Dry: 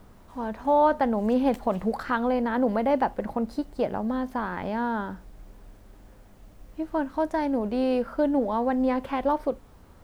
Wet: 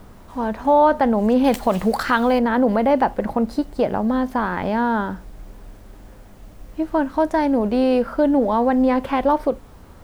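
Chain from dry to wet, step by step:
0:01.44–0:02.39: high-shelf EQ 2,100 Hz +9.5 dB
in parallel at −1 dB: brickwall limiter −19 dBFS, peak gain reduction 8.5 dB
on the sum: level +2.5 dB

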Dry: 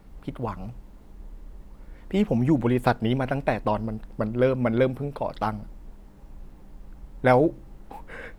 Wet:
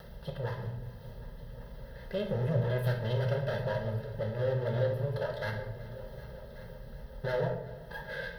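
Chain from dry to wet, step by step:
lower of the sound and its delayed copy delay 1.9 ms
low-shelf EQ 61 Hz −8.5 dB
in parallel at +3 dB: upward compression, threshold −30 dBFS
on the sum: brickwall limiter −12 dBFS, peak gain reduction 11 dB
soft clipping −15 dBFS, distortion −18 dB
phaser with its sweep stopped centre 1,600 Hz, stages 8
notch comb filter 740 Hz
on a send: echo machine with several playback heads 379 ms, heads all three, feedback 44%, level −20 dB
on the sum: rectangular room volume 240 cubic metres, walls mixed, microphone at 0.97 metres
level −7 dB

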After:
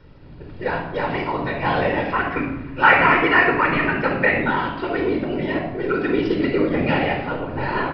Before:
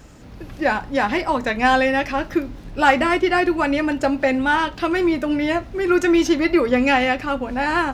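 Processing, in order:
0:02.12–0:04.38: flat-topped bell 1,600 Hz +11 dB
random phases in short frames
high-frequency loss of the air 80 metres
rectangular room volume 3,700 cubic metres, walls furnished, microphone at 4.6 metres
downsampling to 11,025 Hz
level −7.5 dB

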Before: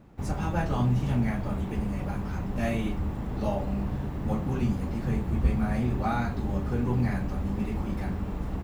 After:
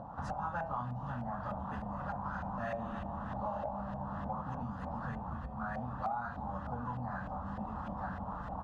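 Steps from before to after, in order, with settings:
0:02.16–0:04.42: reverse bouncing-ball delay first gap 80 ms, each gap 1.25×, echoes 5
upward compression, threshold −38 dBFS
low-shelf EQ 350 Hz −7 dB
phaser with its sweep stopped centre 920 Hz, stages 4
auto-filter low-pass saw up 3.3 Hz 670–2,100 Hz
downward compressor 12 to 1, threshold −40 dBFS, peak gain reduction 17.5 dB
high-pass filter 110 Hz 6 dB per octave
high-shelf EQ 2,600 Hz +11.5 dB
hum removal 303.8 Hz, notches 11
level +6 dB

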